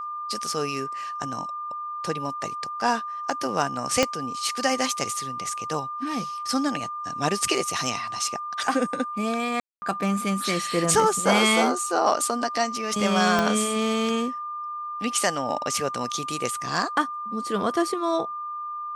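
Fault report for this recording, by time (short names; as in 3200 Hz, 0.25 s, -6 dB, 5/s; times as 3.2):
tone 1200 Hz -30 dBFS
4.03 pop -5 dBFS
9.6–9.82 gap 0.22 s
13.39 pop -8 dBFS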